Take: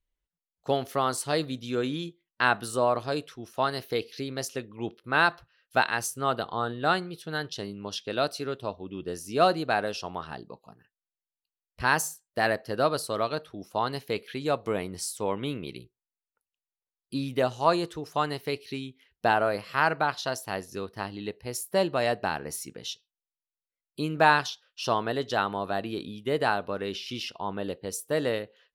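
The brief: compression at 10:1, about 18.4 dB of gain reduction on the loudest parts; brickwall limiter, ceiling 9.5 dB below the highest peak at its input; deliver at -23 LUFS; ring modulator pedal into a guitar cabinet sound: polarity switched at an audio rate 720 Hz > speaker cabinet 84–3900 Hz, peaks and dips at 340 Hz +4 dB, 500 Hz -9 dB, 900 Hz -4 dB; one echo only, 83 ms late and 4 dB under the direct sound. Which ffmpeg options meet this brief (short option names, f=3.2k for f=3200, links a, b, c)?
-af "acompressor=threshold=-35dB:ratio=10,alimiter=level_in=4.5dB:limit=-24dB:level=0:latency=1,volume=-4.5dB,aecho=1:1:83:0.631,aeval=exprs='val(0)*sgn(sin(2*PI*720*n/s))':c=same,highpass=84,equalizer=f=340:t=q:w=4:g=4,equalizer=f=500:t=q:w=4:g=-9,equalizer=f=900:t=q:w=4:g=-4,lowpass=f=3.9k:w=0.5412,lowpass=f=3.9k:w=1.3066,volume=18.5dB"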